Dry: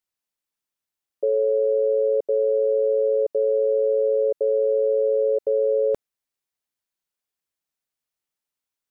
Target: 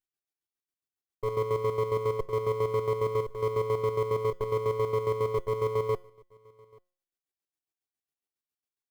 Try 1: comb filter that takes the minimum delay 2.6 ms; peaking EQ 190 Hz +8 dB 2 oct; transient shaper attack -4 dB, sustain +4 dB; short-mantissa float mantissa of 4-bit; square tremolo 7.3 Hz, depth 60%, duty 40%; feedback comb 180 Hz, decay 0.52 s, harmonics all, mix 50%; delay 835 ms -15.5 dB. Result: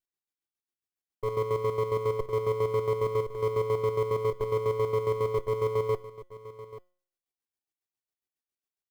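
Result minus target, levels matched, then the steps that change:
echo-to-direct +11.5 dB
change: delay 835 ms -27 dB

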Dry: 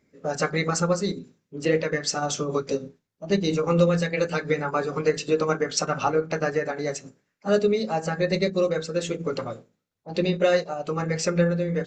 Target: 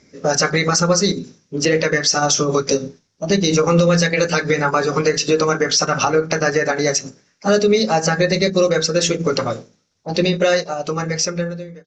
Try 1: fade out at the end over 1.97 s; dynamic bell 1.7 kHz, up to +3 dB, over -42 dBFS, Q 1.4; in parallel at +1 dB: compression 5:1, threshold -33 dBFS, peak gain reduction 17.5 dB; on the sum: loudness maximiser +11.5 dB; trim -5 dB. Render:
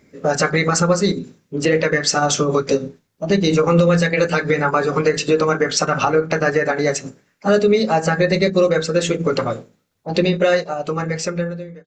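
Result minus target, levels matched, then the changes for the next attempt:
8 kHz band -4.5 dB
add after dynamic bell: resonant low-pass 5.7 kHz, resonance Q 4.6

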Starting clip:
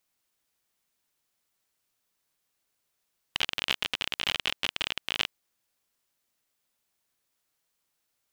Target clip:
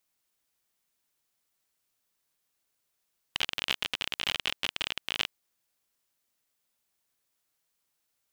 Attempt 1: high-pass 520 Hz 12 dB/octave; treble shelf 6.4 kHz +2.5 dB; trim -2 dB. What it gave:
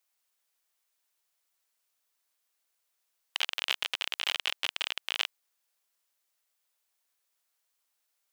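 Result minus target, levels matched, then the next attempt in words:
500 Hz band -3.0 dB
treble shelf 6.4 kHz +2.5 dB; trim -2 dB

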